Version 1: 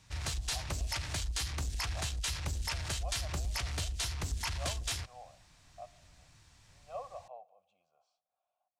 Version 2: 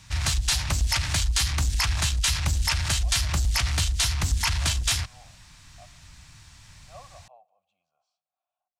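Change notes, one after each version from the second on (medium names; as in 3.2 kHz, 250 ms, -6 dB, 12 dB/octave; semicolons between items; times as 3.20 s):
background +12.0 dB; master: add peaking EQ 440 Hz -10.5 dB 1.1 oct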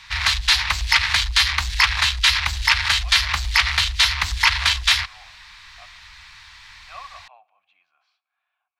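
speech: remove static phaser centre 760 Hz, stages 4; master: add graphic EQ 125/250/500/1000/2000/4000/8000 Hz -12/-8/-9/+10/+11/+10/-7 dB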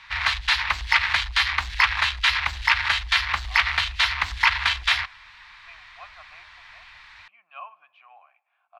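speech: entry +2.95 s; master: add tone controls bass -8 dB, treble -15 dB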